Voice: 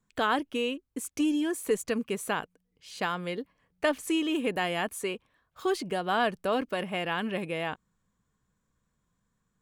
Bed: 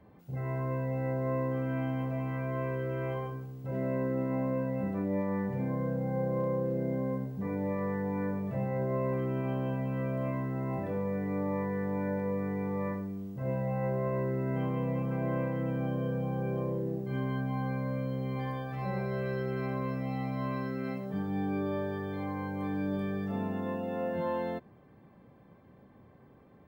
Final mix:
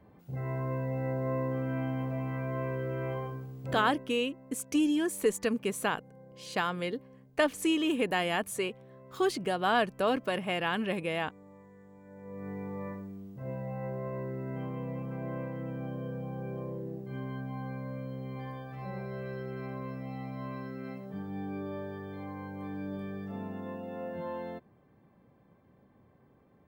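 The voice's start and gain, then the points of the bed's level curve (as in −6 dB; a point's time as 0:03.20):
3.55 s, 0.0 dB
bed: 0:03.69 −0.5 dB
0:04.16 −22 dB
0:12.03 −22 dB
0:12.49 −5.5 dB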